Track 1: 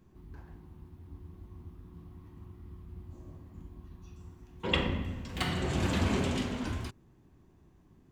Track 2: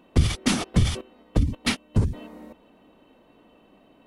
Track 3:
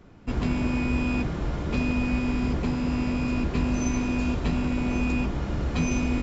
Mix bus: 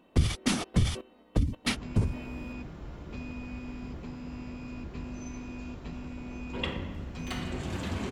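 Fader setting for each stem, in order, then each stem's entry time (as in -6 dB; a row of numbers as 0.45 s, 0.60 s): -5.0 dB, -5.0 dB, -14.5 dB; 1.90 s, 0.00 s, 1.40 s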